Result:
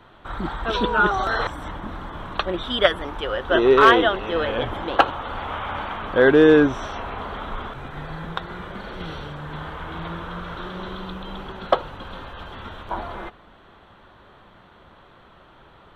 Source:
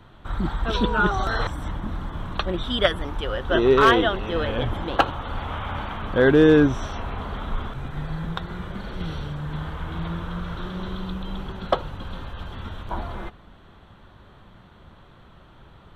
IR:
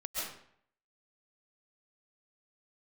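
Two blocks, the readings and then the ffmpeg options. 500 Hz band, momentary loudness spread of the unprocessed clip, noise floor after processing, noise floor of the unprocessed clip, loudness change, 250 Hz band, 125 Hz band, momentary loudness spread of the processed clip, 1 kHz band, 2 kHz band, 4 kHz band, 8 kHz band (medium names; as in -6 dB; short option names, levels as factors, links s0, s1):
+2.5 dB, 18 LU, -51 dBFS, -50 dBFS, +3.0 dB, 0.0 dB, -5.5 dB, 21 LU, +3.5 dB, +3.5 dB, +1.5 dB, no reading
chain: -af "bass=f=250:g=-10,treble=f=4000:g=-6,volume=1.5"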